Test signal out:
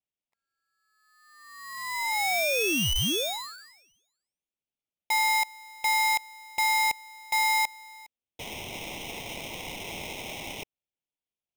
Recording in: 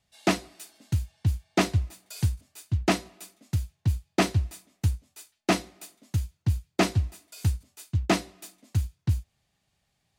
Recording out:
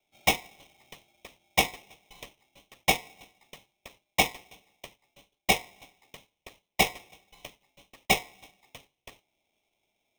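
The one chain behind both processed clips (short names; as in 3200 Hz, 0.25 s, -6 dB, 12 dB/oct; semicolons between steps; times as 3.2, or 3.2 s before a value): mistuned SSB +61 Hz 530–2000 Hz; polarity switched at an audio rate 1500 Hz; gain +4.5 dB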